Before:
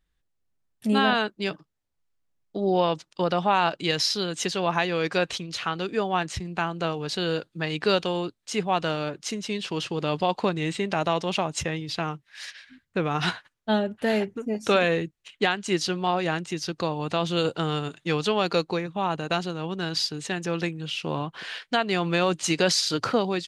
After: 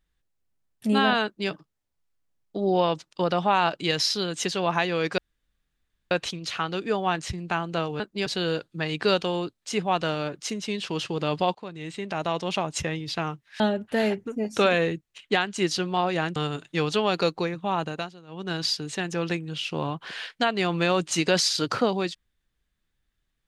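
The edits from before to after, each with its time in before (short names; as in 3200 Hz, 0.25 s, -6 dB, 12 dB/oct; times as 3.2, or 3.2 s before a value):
1.24–1.5 copy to 7.07
5.18 insert room tone 0.93 s
10.36–11.89 fade in equal-power, from -19.5 dB
12.41–13.7 cut
16.46–17.68 cut
19.19–19.83 dip -16.5 dB, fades 0.24 s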